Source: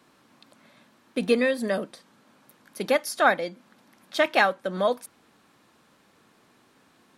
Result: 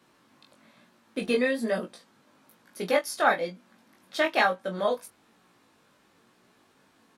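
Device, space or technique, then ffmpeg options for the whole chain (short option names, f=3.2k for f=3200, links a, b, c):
double-tracked vocal: -filter_complex "[0:a]asplit=2[a][b];[b]adelay=22,volume=-8dB[c];[a][c]amix=inputs=2:normalize=0,flanger=delay=16.5:depth=3.6:speed=1.1"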